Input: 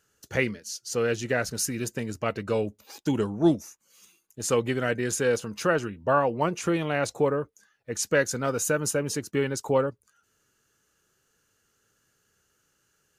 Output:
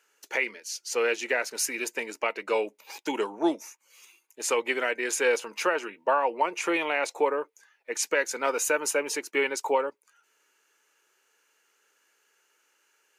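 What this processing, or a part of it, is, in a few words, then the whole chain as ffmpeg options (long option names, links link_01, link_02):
laptop speaker: -af "highpass=frequency=340:width=0.5412,highpass=frequency=340:width=1.3066,equalizer=frequency=920:width_type=o:width=0.28:gain=10,equalizer=frequency=2300:width_type=o:width=0.59:gain=11,alimiter=limit=-13.5dB:level=0:latency=1:release=224"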